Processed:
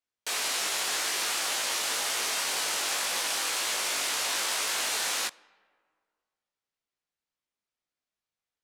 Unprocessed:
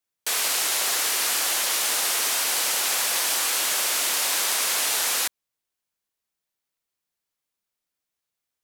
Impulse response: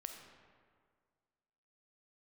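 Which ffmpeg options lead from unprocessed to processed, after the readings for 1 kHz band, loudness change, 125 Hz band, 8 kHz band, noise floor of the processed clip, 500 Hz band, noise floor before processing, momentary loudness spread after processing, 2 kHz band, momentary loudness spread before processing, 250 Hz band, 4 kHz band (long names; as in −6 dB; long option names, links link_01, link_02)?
−3.5 dB, −6.0 dB, can't be measured, −7.0 dB, below −85 dBFS, −3.5 dB, −85 dBFS, 1 LU, −3.5 dB, 1 LU, −3.0 dB, −4.0 dB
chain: -filter_complex "[0:a]asplit=2[link_01][link_02];[1:a]atrim=start_sample=2205[link_03];[link_02][link_03]afir=irnorm=-1:irlink=0,volume=-12.5dB[link_04];[link_01][link_04]amix=inputs=2:normalize=0,adynamicsmooth=sensitivity=3.5:basefreq=7200,flanger=delay=18:depth=2.3:speed=1.9,volume=-1.5dB"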